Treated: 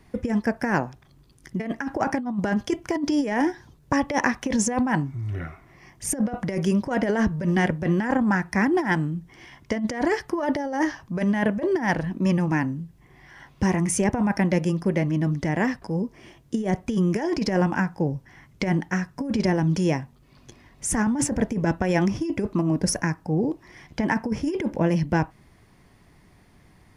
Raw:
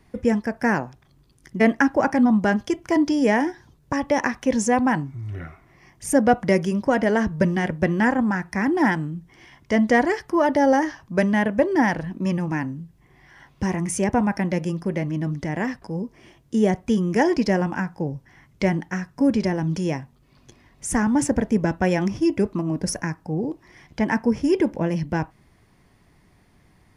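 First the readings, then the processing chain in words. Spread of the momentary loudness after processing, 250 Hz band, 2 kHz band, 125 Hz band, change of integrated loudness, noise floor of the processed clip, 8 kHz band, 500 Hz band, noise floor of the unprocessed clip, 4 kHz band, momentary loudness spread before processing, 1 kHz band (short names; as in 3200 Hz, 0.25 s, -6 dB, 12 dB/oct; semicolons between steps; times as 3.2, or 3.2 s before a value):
8 LU, -2.0 dB, -2.5 dB, +1.5 dB, -2.5 dB, -56 dBFS, +2.0 dB, -4.0 dB, -58 dBFS, 0.0 dB, 12 LU, -3.5 dB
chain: negative-ratio compressor -21 dBFS, ratio -0.5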